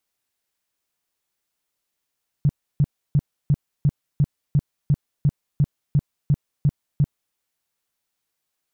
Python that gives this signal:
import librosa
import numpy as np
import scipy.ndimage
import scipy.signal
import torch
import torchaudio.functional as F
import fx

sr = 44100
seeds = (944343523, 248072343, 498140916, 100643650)

y = fx.tone_burst(sr, hz=144.0, cycles=6, every_s=0.35, bursts=14, level_db=-13.0)